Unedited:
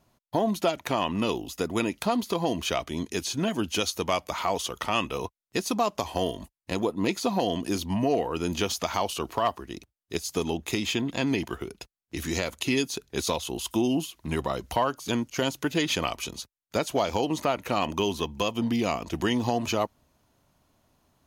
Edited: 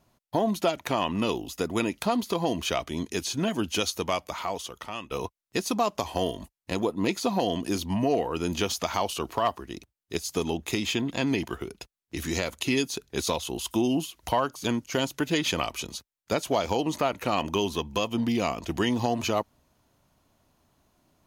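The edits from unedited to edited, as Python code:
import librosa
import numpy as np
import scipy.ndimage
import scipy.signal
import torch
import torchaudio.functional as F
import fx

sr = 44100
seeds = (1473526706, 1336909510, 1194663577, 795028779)

y = fx.edit(x, sr, fx.fade_out_to(start_s=3.89, length_s=1.22, floor_db=-13.5),
    fx.cut(start_s=14.23, length_s=0.44), tone=tone)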